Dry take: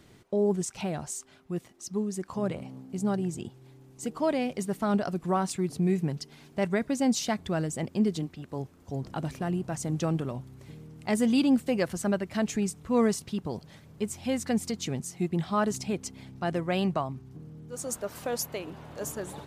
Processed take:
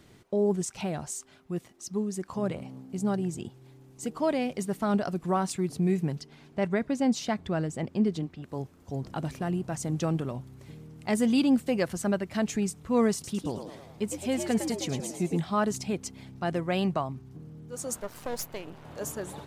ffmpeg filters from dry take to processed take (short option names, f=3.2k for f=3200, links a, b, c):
-filter_complex "[0:a]asettb=1/sr,asplit=3[a][b][c];[a]atrim=end=6.214[d];[b]atrim=start=6.21:end=8.44,asetpts=PTS-STARTPTS,afade=t=in:d=0.004:c=qsin,afade=t=out:st=2.226:d=0.004:c=qsin,lowpass=f=3.5k:p=1[e];[c]atrim=start=8.436[f];[d][e]acrossfade=d=0.004:c1=hsin:c2=qsin[g];[g][f]acrossfade=d=0.004:c1=qsin:c2=hsin,asettb=1/sr,asplit=3[h][i][j];[h]atrim=end=13.134[k];[i]atrim=start=13.13:end=15.4,asetpts=PTS-STARTPTS,afade=t=in:d=0.004:c=qsin,afade=t=out:st=2.266:d=0.004:c=qsin,asplit=7[l][m][n][o][p][q][r];[m]adelay=107,afreqshift=91,volume=-7.5dB[s];[n]adelay=214,afreqshift=182,volume=-13.5dB[t];[o]adelay=321,afreqshift=273,volume=-19.5dB[u];[p]adelay=428,afreqshift=364,volume=-25.6dB[v];[q]adelay=535,afreqshift=455,volume=-31.6dB[w];[r]adelay=642,afreqshift=546,volume=-37.6dB[x];[l][s][t][u][v][w][x]amix=inputs=7:normalize=0,atrim=end_sample=100107[y];[j]atrim=start=15.396[z];[k][y]acrossfade=d=0.004:c1=hsin:c2=qsin[aa];[aa][z]acrossfade=d=0.004:c1=qsin:c2=hsin,asettb=1/sr,asplit=3[ab][ac][ad];[ab]atrim=end=18.004[ae];[ac]atrim=start=18:end=18.85,asetpts=PTS-STARTPTS,afade=t=in:d=0.004:c=qsin,afade=t=out:st=0.846:d=0.004:c=qsin,aeval=exprs='if(lt(val(0),0),0.251*val(0),val(0))':c=same[af];[ad]atrim=start=18.846[ag];[ae][af]acrossfade=d=0.004:c1=hsin:c2=qsin[ah];[ah][ag]acrossfade=d=0.004:c1=qsin:c2=hsin"